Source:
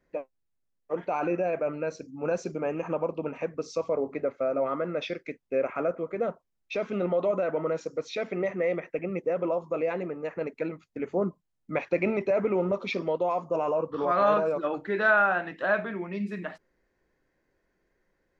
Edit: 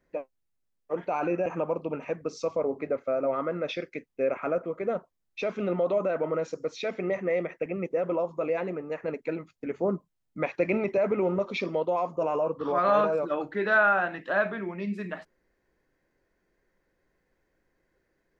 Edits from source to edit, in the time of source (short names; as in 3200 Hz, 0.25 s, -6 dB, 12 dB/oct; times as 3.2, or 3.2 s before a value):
1.46–2.79 cut